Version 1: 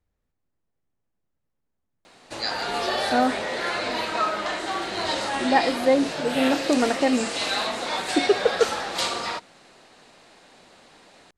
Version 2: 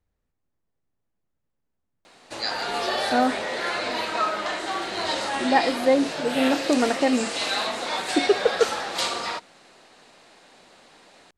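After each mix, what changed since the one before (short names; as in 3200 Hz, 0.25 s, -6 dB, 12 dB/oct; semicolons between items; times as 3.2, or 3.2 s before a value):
background: add low shelf 170 Hz -5.5 dB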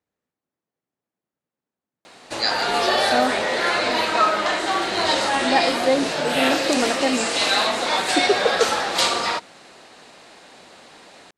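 speech: add HPF 200 Hz 12 dB/oct; background +6.5 dB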